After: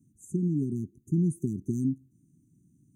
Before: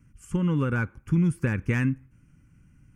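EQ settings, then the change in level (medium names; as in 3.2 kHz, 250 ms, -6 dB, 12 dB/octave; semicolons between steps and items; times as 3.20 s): high-pass 180 Hz 12 dB/octave; brick-wall FIR band-stop 410–5900 Hz; 0.0 dB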